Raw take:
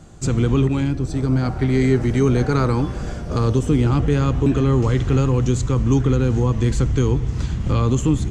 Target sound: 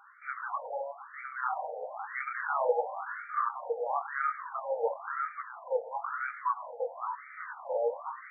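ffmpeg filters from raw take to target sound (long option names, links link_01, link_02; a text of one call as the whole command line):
ffmpeg -i in.wav -filter_complex "[0:a]asettb=1/sr,asplit=3[link_01][link_02][link_03];[link_01]atrim=end=6.204[link_04];[link_02]atrim=start=6.2:end=7.16,asetpts=PTS-STARTPTS,afade=type=in:duration=0.004:curve=qsin,afade=type=out:start_time=0.956:duration=0.004:curve=qsin,highpass=frequency=410:poles=1[link_05];[link_03]atrim=start=7.156[link_06];[link_04][link_05]acrossfade=duration=0.004:curve1=hsin:curve2=qsin[link_07];[link_07][link_06]acrossfade=duration=0.004:curve1=qsin:curve2=hsin,asplit=2[link_08][link_09];[link_09]alimiter=limit=-17dB:level=0:latency=1:release=13,volume=2.5dB[link_10];[link_08][link_10]amix=inputs=2:normalize=0,flanger=delay=16:depth=7.3:speed=1.1,afftfilt=real='re*between(b*sr/1024,630*pow(1700/630,0.5+0.5*sin(2*PI*0.99*pts/sr))/1.41,630*pow(1700/630,0.5+0.5*sin(2*PI*0.99*pts/sr))*1.41)':imag='im*between(b*sr/1024,630*pow(1700/630,0.5+0.5*sin(2*PI*0.99*pts/sr))/1.41,630*pow(1700/630,0.5+0.5*sin(2*PI*0.99*pts/sr))*1.41)':win_size=1024:overlap=0.75" out.wav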